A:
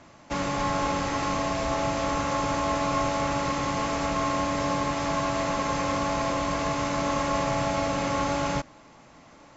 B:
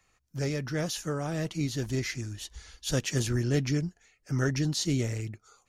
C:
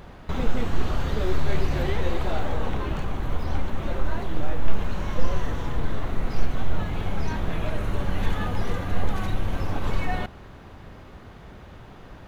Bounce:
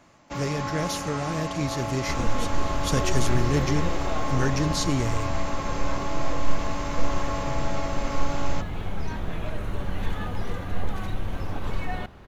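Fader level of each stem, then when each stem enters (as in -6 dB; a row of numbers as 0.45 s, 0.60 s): -5.0 dB, +2.0 dB, -3.5 dB; 0.00 s, 0.00 s, 1.80 s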